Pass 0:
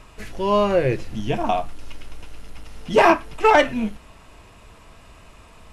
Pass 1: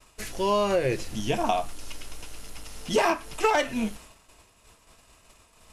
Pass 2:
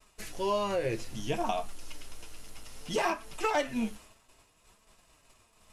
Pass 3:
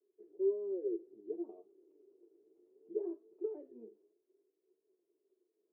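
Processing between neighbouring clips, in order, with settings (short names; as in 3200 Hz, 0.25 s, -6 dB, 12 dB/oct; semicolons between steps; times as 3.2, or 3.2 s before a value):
expander -38 dBFS; tone controls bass -4 dB, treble +11 dB; compressor 5:1, threshold -19 dBFS, peak gain reduction 9 dB; gain -1 dB
flange 0.62 Hz, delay 4.4 ms, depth 5.5 ms, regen +51%; gain -2 dB
Butterworth band-pass 380 Hz, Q 5.2; gain +2.5 dB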